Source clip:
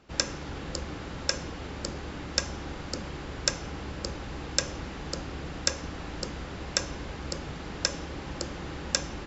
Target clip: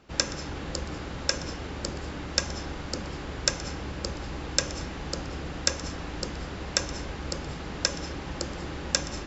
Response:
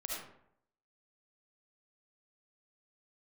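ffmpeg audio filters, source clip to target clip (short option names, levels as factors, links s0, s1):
-filter_complex "[0:a]asplit=2[s0][s1];[1:a]atrim=start_sample=2205,adelay=123[s2];[s1][s2]afir=irnorm=-1:irlink=0,volume=0.2[s3];[s0][s3]amix=inputs=2:normalize=0,volume=1.19"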